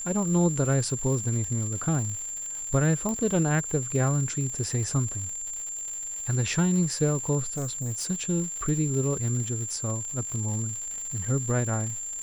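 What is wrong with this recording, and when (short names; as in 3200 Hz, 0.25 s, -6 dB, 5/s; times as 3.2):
crackle 200/s -34 dBFS
tone 7300 Hz -32 dBFS
3.09 pop -18 dBFS
7.46–8.1 clipped -27 dBFS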